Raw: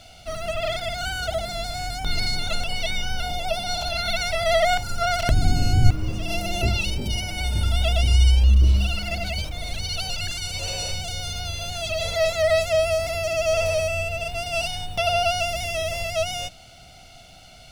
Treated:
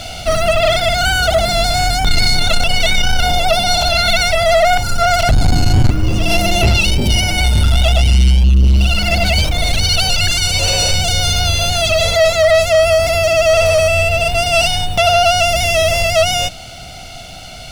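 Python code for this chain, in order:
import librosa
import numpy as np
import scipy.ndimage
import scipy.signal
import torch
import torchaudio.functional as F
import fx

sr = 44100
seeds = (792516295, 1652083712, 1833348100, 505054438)

p1 = fx.rider(x, sr, range_db=10, speed_s=0.5)
p2 = x + (p1 * librosa.db_to_amplitude(1.0))
p3 = 10.0 ** (-13.0 / 20.0) * np.tanh(p2 / 10.0 ** (-13.0 / 20.0))
y = p3 * librosa.db_to_amplitude(7.0)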